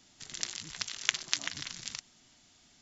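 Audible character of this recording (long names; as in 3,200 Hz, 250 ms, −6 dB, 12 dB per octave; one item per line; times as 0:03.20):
background noise floor −63 dBFS
spectral slope +1.0 dB per octave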